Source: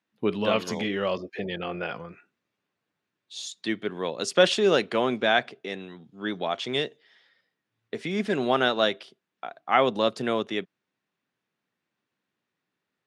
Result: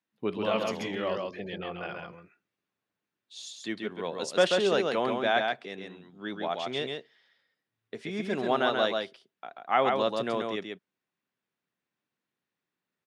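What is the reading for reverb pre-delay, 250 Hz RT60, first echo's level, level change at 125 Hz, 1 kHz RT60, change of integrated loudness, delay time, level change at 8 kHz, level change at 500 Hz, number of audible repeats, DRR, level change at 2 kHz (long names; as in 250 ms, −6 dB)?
no reverb audible, no reverb audible, −4.0 dB, −5.0 dB, no reverb audible, −3.0 dB, 135 ms, −5.0 dB, −3.0 dB, 1, no reverb audible, −4.0 dB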